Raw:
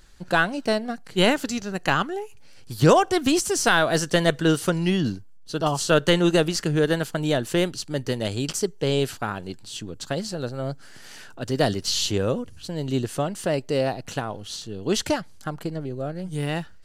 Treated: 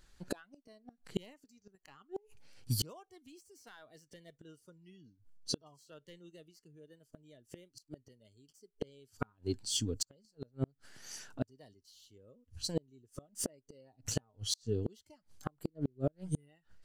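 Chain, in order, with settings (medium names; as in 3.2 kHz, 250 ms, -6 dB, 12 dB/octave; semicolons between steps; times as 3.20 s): tracing distortion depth 0.031 ms; spectral noise reduction 14 dB; inverted gate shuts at -24 dBFS, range -39 dB; trim +3.5 dB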